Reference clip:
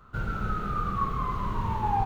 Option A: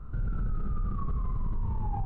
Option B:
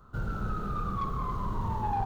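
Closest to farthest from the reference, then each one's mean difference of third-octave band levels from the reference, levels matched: B, A; 2.0, 8.0 decibels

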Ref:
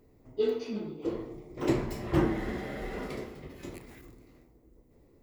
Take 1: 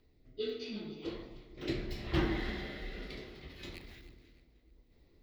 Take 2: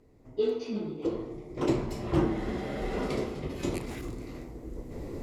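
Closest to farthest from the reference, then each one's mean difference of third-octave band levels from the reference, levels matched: 1, 2; 4.0, 5.0 decibels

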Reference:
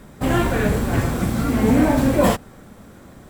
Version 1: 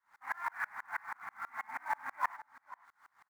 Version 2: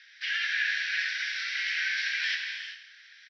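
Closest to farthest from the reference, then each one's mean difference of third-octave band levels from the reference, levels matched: 1, 2; 15.0, 24.5 decibels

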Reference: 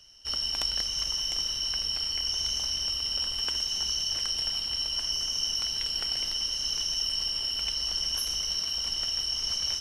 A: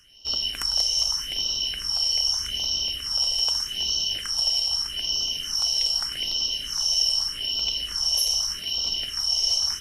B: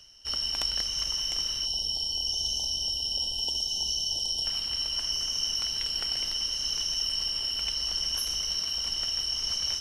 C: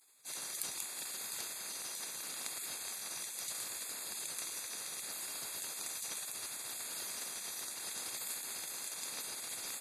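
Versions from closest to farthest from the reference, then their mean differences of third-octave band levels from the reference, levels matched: B, A, C; 1.5, 4.5, 10.5 decibels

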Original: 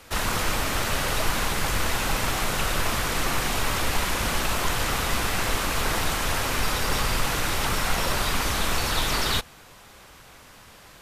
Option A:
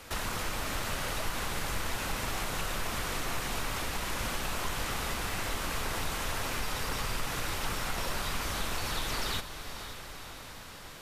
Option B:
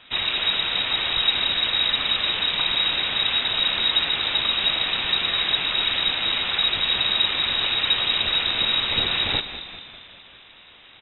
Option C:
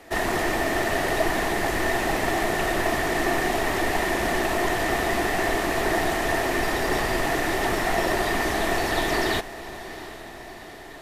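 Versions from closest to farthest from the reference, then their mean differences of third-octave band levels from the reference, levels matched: A, C, B; 2.5, 5.5, 17.0 decibels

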